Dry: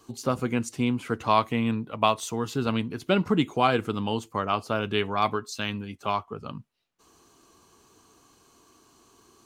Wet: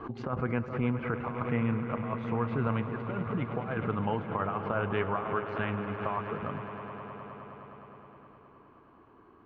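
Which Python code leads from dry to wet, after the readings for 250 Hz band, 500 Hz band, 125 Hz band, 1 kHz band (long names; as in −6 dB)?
−5.0 dB, −5.0 dB, −0.5 dB, −7.0 dB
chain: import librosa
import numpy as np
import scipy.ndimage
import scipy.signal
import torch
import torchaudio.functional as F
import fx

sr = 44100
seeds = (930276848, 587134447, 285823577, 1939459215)

p1 = scipy.signal.sosfilt(scipy.signal.butter(4, 1900.0, 'lowpass', fs=sr, output='sos'), x)
p2 = fx.dynamic_eq(p1, sr, hz=290.0, q=1.1, threshold_db=-40.0, ratio=4.0, max_db=-8)
p3 = fx.over_compress(p2, sr, threshold_db=-29.0, ratio=-0.5)
p4 = p3 + fx.echo_swell(p3, sr, ms=104, loudest=5, wet_db=-14.0, dry=0)
p5 = fx.pre_swell(p4, sr, db_per_s=100.0)
y = F.gain(torch.from_numpy(p5), -1.5).numpy()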